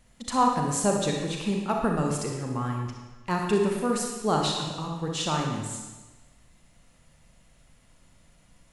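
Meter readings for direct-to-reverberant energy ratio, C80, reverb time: 0.5 dB, 4.5 dB, 1.2 s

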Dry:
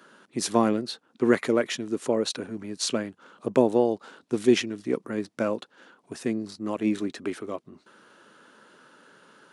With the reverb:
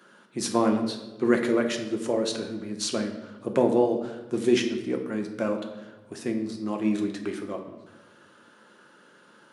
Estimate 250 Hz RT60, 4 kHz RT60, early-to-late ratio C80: 1.5 s, 0.85 s, 10.0 dB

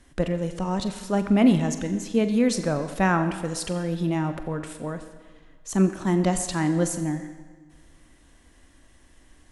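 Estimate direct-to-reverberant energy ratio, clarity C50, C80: 8.0 dB, 10.0 dB, 10.5 dB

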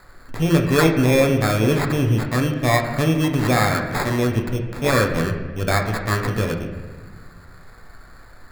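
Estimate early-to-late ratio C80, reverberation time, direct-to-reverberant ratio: 8.5 dB, 1.4 s, 2.0 dB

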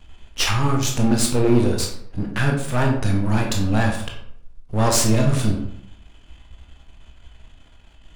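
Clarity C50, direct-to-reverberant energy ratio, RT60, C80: 5.0 dB, 0.5 dB, 0.65 s, 8.5 dB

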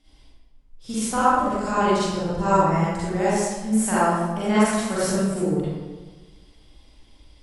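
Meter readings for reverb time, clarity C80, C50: 1.3 s, -1.0 dB, -6.5 dB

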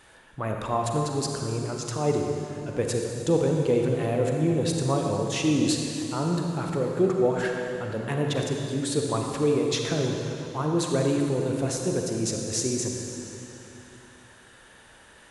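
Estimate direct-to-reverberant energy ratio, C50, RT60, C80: 1.0 dB, 1.5 dB, 2.9 s, 2.5 dB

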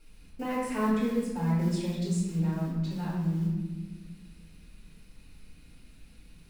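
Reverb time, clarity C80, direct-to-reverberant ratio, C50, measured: 1.3 s, 3.5 dB, -9.0 dB, 0.5 dB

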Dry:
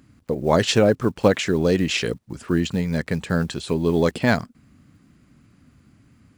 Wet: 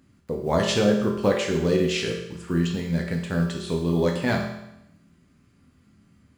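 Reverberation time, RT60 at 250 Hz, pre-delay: 0.85 s, 0.85 s, 9 ms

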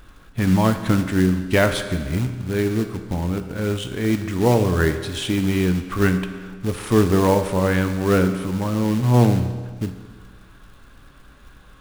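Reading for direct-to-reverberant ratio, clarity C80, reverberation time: 8.0 dB, 11.0 dB, 1.6 s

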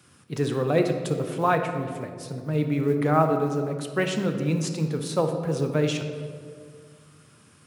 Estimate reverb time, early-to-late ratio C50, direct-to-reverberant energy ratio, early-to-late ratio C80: 2.1 s, 6.5 dB, 5.0 dB, 8.0 dB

